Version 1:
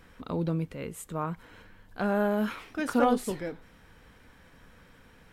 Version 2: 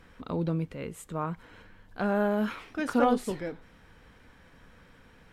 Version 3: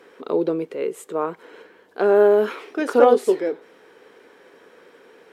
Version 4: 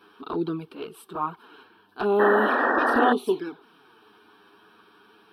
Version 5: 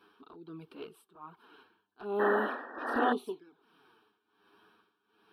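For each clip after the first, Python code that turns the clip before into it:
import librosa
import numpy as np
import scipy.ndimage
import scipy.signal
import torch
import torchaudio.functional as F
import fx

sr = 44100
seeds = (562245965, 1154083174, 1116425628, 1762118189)

y1 = fx.high_shelf(x, sr, hz=9800.0, db=-9.0)
y2 = fx.highpass_res(y1, sr, hz=400.0, q=4.9)
y2 = y2 * 10.0 ** (5.0 / 20.0)
y3 = fx.env_flanger(y2, sr, rest_ms=10.6, full_db=-15.0)
y3 = fx.fixed_phaser(y3, sr, hz=2000.0, stages=6)
y3 = fx.spec_paint(y3, sr, seeds[0], shape='noise', start_s=2.19, length_s=0.94, low_hz=220.0, high_hz=1900.0, level_db=-26.0)
y3 = y3 * 10.0 ** (3.5 / 20.0)
y4 = y3 * (1.0 - 0.86 / 2.0 + 0.86 / 2.0 * np.cos(2.0 * np.pi * 1.3 * (np.arange(len(y3)) / sr)))
y4 = y4 * 10.0 ** (-8.0 / 20.0)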